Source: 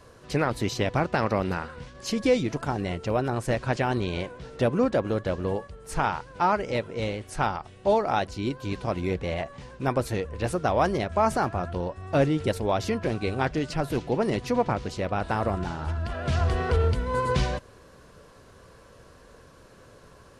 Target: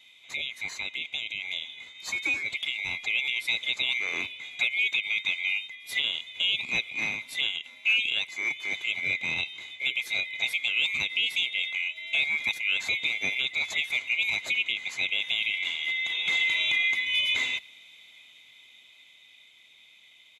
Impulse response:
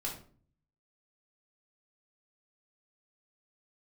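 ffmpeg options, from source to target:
-filter_complex "[0:a]afftfilt=real='real(if(lt(b,920),b+92*(1-2*mod(floor(b/92),2)),b),0)':imag='imag(if(lt(b,920),b+92*(1-2*mod(floor(b/92),2)),b),0)':win_size=2048:overlap=0.75,highpass=68,equalizer=f=3700:w=4.6:g=14,alimiter=limit=0.211:level=0:latency=1:release=209,dynaudnorm=f=160:g=31:m=1.88,asplit=2[s0][s1];[s1]adelay=90,highpass=300,lowpass=3400,asoftclip=type=hard:threshold=0.141,volume=0.0501[s2];[s0][s2]amix=inputs=2:normalize=0,volume=0.422"

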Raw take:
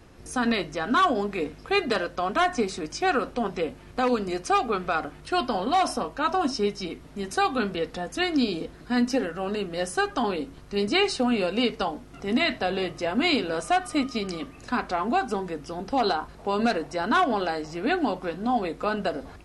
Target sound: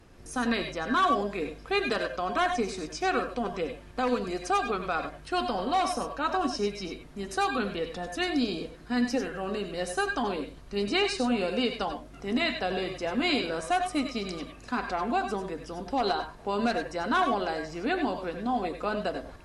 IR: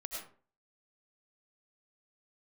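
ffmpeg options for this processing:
-filter_complex "[1:a]atrim=start_sample=2205,atrim=end_sample=3969,asetrate=37926,aresample=44100[s0];[0:a][s0]afir=irnorm=-1:irlink=0"

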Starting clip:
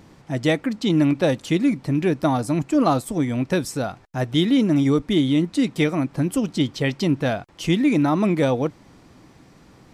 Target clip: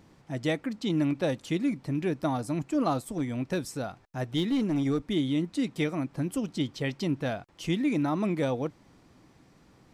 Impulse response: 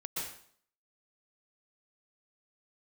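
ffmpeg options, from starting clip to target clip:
-filter_complex "[0:a]asettb=1/sr,asplit=3[s0][s1][s2];[s0]atrim=end=3.004[s3];[s1]atrim=start=3:end=5.11,asetpts=PTS-STARTPTS,afade=t=in:d=0.004:c=qsin,afade=t=out:st=2.106:d=0.004:c=qsin,aeval=exprs='clip(val(0),-1,0.188)':c=same[s4];[s2]atrim=start=5.106[s5];[s3][s4]acrossfade=d=0.004:c1=hsin:c2=qsin[s6];[s6][s5]acrossfade=d=0.004:c1=qsin:c2=hsin,volume=0.376"

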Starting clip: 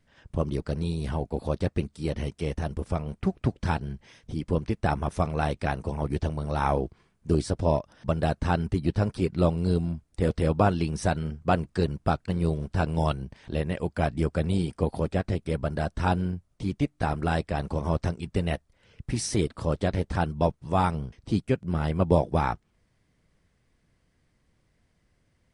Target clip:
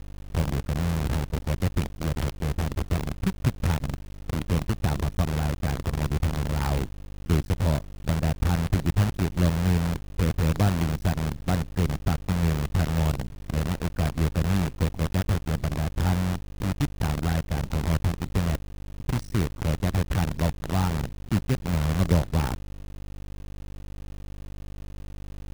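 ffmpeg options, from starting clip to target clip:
-af "aeval=exprs='val(0)+0.0112*(sin(2*PI*50*n/s)+sin(2*PI*2*50*n/s)/2+sin(2*PI*3*50*n/s)/3+sin(2*PI*4*50*n/s)/4+sin(2*PI*5*50*n/s)/5)':c=same,bass=f=250:g=13,treble=f=4000:g=-12,acrusher=bits=4:dc=4:mix=0:aa=0.000001,volume=0.376"

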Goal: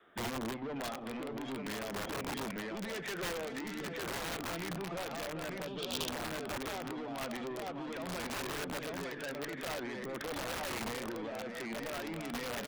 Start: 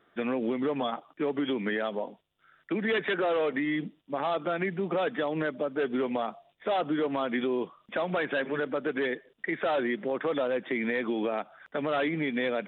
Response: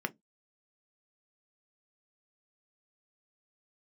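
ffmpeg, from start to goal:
-filter_complex "[0:a]adynamicequalizer=threshold=0.00631:dfrequency=130:dqfactor=0.74:tfrequency=130:tqfactor=0.74:attack=5:release=100:ratio=0.375:range=2:mode=boostabove:tftype=bell,asoftclip=type=tanh:threshold=0.0282,bandreject=f=50:t=h:w=6,bandreject=f=100:t=h:w=6,bandreject=f=150:t=h:w=6,bandreject=f=200:t=h:w=6,bandreject=f=250:t=h:w=6,bandreject=f=300:t=h:w=6,asplit=2[s0][s1];[s1]aecho=0:1:85|229|606|895:0.133|0.141|0.316|0.668[s2];[s0][s2]amix=inputs=2:normalize=0,alimiter=level_in=2.99:limit=0.0631:level=0:latency=1:release=117,volume=0.335,aphaser=in_gain=1:out_gain=1:delay=1.6:decay=0.21:speed=0.47:type=sinusoidal,aeval=exprs='(mod(47.3*val(0)+1,2)-1)/47.3':c=same,asettb=1/sr,asplit=3[s3][s4][s5];[s3]atrim=end=5.674[s6];[s4]atrim=start=5.67:end=6.09,asetpts=PTS-STARTPTS,afade=t=in:d=0.004:c=qsin,afade=t=out:st=0.416:d=0.004:c=qsin,highshelf=f=2500:t=q:w=3:g=8[s7];[s5]atrim=start=6.086[s8];[s6][s7]acrossfade=d=0.004:c1=hsin:c2=qsin[s9];[s9][s8]acrossfade=d=0.004:c1=qsin:c2=hsin"

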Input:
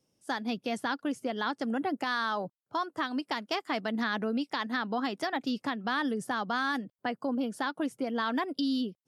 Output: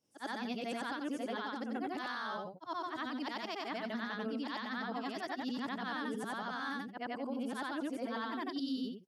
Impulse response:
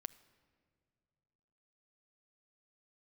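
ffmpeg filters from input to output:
-af "afftfilt=real='re':imag='-im':win_size=8192:overlap=0.75,highpass=92,alimiter=level_in=2:limit=0.0631:level=0:latency=1:release=287,volume=0.501,volume=1.12"

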